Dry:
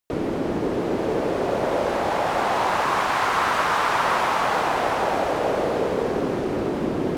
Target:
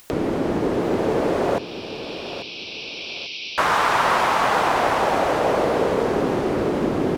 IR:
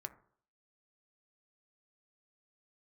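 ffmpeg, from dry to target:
-filter_complex "[0:a]acompressor=mode=upward:threshold=-28dB:ratio=2.5,asettb=1/sr,asplit=3[link_01][link_02][link_03];[link_01]atrim=end=1.584[link_04];[link_02]atrim=start=1.58:end=3.58,asetpts=PTS-STARTPTS,afade=type=in:duration=0.004:curve=qsin,afade=type=out:start_time=1.996:duration=0.004:curve=qsin,asuperpass=centerf=3700:order=20:qfactor=1.1[link_05];[link_03]atrim=start=3.576[link_06];[link_04][link_05]acrossfade=duration=0.004:curve1=hsin:curve2=qsin[link_07];[link_07][link_06]acrossfade=duration=0.004:curve1=qsin:curve2=hsin,aecho=1:1:841|1682|2523|3364:0.251|0.0904|0.0326|0.0117,volume=2.5dB"

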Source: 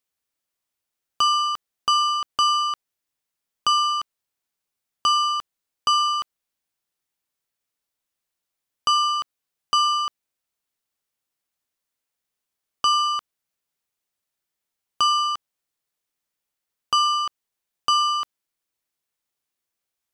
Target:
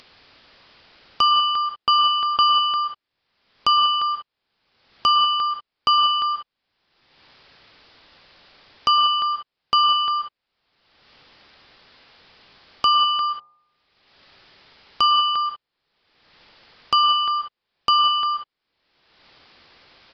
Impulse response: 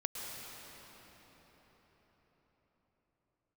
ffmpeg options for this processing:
-filter_complex "[1:a]atrim=start_sample=2205,afade=type=out:start_time=0.25:duration=0.01,atrim=end_sample=11466[link_01];[0:a][link_01]afir=irnorm=-1:irlink=0,aresample=11025,aresample=44100,asettb=1/sr,asplit=3[link_02][link_03][link_04];[link_02]atrim=end=13.174[link_05];[link_03]atrim=start=13.17:end=15.22,asetpts=PTS-STARTPTS,afade=type=in:duration=0.004:curve=qsin,afade=type=out:start_time=2.046:duration=0.004:curve=qsin,bandreject=frequency=60.39:width_type=h:width=4,bandreject=frequency=120.78:width_type=h:width=4,bandreject=frequency=181.17:width_type=h:width=4,bandreject=frequency=241.56:width_type=h:width=4,bandreject=frequency=301.95:width_type=h:width=4,bandreject=frequency=362.34:width_type=h:width=4,bandreject=frequency=422.73:width_type=h:width=4,bandreject=frequency=483.12:width_type=h:width=4,bandreject=frequency=543.51:width_type=h:width=4,bandreject=frequency=603.9:width_type=h:width=4,bandreject=frequency=664.29:width_type=h:width=4,bandreject=frequency=724.68:width_type=h:width=4,bandreject=frequency=785.07:width_type=h:width=4,bandreject=frequency=845.46:width_type=h:width=4,bandreject=frequency=905.85:width_type=h:width=4,bandreject=frequency=966.24:width_type=h:width=4,bandreject=frequency=1026.63:width_type=h:width=4,bandreject=frequency=1087.02:width_type=h:width=4,bandreject=frequency=1147.41:width_type=h:width=4,bandreject=frequency=1207.8:width_type=h:width=4[link_06];[link_04]atrim=start=15.216[link_07];[link_05][link_06]acrossfade=duration=0.004:curve1=hsin:curve2=qsin[link_08];[link_08][link_07]acrossfade=duration=0.004:curve1=qsin:curve2=hsin,acompressor=mode=upward:threshold=-31dB:ratio=2.5,volume=4dB"

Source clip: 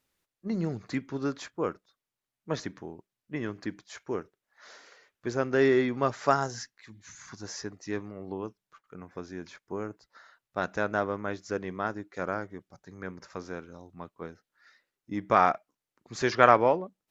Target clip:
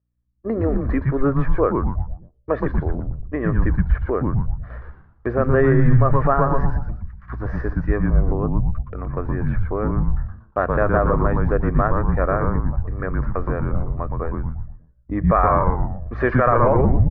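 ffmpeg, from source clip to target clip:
ffmpeg -i in.wav -filter_complex "[0:a]lowpass=frequency=1700:width=0.5412,lowpass=frequency=1700:width=1.3066,lowshelf=frequency=210:width_type=q:width=3:gain=-10.5,aeval=exprs='val(0)+0.00141*(sin(2*PI*60*n/s)+sin(2*PI*2*60*n/s)/2+sin(2*PI*3*60*n/s)/3+sin(2*PI*4*60*n/s)/4+sin(2*PI*5*60*n/s)/5)':channel_layout=same,agate=range=-30dB:threshold=-51dB:ratio=16:detection=peak,highpass=66,aecho=1:1:1.7:0.43,asplit=6[link_01][link_02][link_03][link_04][link_05][link_06];[link_02]adelay=118,afreqshift=-130,volume=-4dB[link_07];[link_03]adelay=236,afreqshift=-260,volume=-12.4dB[link_08];[link_04]adelay=354,afreqshift=-390,volume=-20.8dB[link_09];[link_05]adelay=472,afreqshift=-520,volume=-29.2dB[link_10];[link_06]adelay=590,afreqshift=-650,volume=-37.6dB[link_11];[link_01][link_07][link_08][link_09][link_10][link_11]amix=inputs=6:normalize=0,asplit=2[link_12][link_13];[link_13]acompressor=threshold=-34dB:ratio=6,volume=-1dB[link_14];[link_12][link_14]amix=inputs=2:normalize=0,asubboost=boost=11.5:cutoff=94,alimiter=level_in=13.5dB:limit=-1dB:release=50:level=0:latency=1,volume=-5.5dB" out.wav

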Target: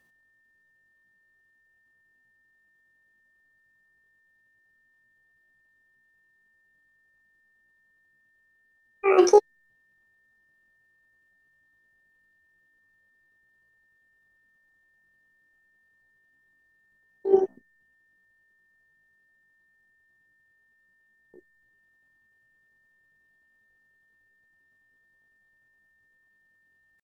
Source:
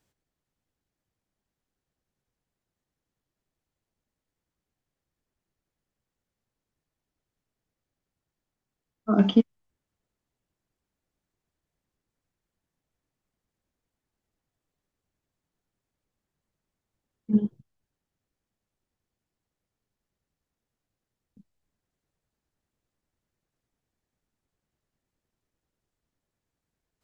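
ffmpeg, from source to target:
ffmpeg -i in.wav -af "asetrate=80880,aresample=44100,atempo=0.545254,aeval=exprs='val(0)+0.000447*sin(2*PI*1800*n/s)':channel_layout=same,volume=3dB" out.wav

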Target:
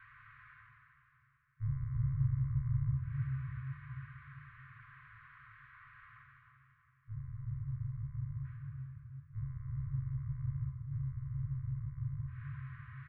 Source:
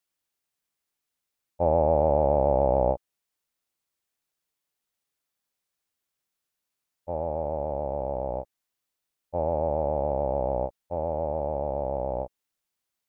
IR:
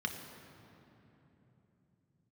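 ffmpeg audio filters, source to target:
-filter_complex "[0:a]bandreject=frequency=60:width_type=h:width=6,bandreject=frequency=120:width_type=h:width=6,bandreject=frequency=180:width_type=h:width=6,bandreject=frequency=240:width_type=h:width=6,highpass=frequency=290:width_type=q:width=0.5412,highpass=frequency=290:width_type=q:width=1.307,lowpass=frequency=2100:width_type=q:width=0.5176,lowpass=frequency=2100:width_type=q:width=0.7071,lowpass=frequency=2100:width_type=q:width=1.932,afreqshift=-330,areverse,acompressor=mode=upward:threshold=-25dB:ratio=2.5,areverse,aecho=1:1:333|666|999|1332|1665:0.282|0.135|0.0649|0.0312|0.015[link_01];[1:a]atrim=start_sample=2205,asetrate=57330,aresample=44100[link_02];[link_01][link_02]afir=irnorm=-1:irlink=0,afftfilt=real='re*(1-between(b*sr/4096,140,1000))':imag='im*(1-between(b*sr/4096,140,1000))':win_size=4096:overlap=0.75"

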